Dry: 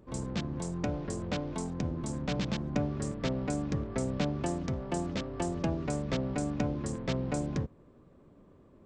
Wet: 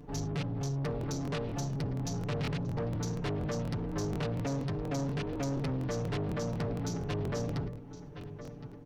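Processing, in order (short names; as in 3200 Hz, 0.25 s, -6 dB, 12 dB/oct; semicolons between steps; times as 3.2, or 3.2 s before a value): pitch shift -4 st; darkening echo 1.065 s, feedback 24%, low-pass 4800 Hz, level -20 dB; in parallel at -1 dB: compressor, threshold -42 dBFS, peak gain reduction 16 dB; on the sum: notches 60/120/180/240/300/360/420 Hz; comb 6.9 ms, depth 95%; soft clip -29.5 dBFS, distortion -10 dB; crackling interface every 0.24 s, samples 1024, repeat, from 0.99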